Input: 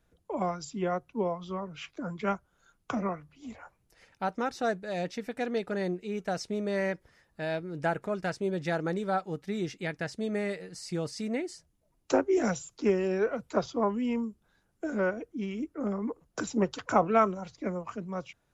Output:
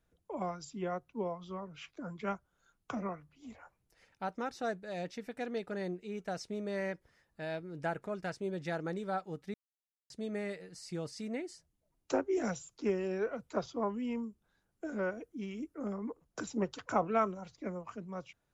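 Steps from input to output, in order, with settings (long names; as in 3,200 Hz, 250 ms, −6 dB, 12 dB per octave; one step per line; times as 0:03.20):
0:09.54–0:10.10: silence
0:15.10–0:15.96: high-shelf EQ 6,400 Hz +7.5 dB
level −6.5 dB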